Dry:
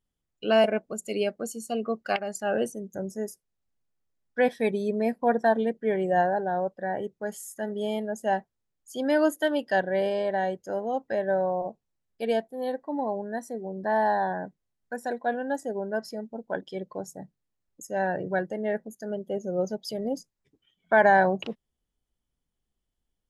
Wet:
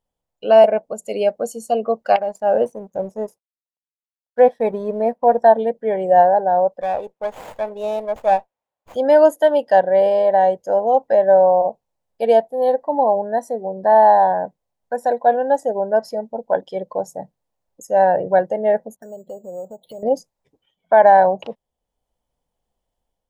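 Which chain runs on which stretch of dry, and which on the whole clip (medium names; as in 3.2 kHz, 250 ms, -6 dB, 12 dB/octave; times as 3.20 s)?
2.22–5.42 s: companding laws mixed up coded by A + treble shelf 2.1 kHz -11 dB
6.81–8.96 s: high-pass 720 Hz 6 dB/octave + sliding maximum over 9 samples
18.96–20.03 s: touch-sensitive phaser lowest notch 410 Hz, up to 2 kHz, full sweep at -27.5 dBFS + careless resampling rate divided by 6×, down filtered, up hold + compression 4:1, threshold -43 dBFS
whole clip: high-order bell 690 Hz +11.5 dB 1.3 oct; level rider gain up to 3.5 dB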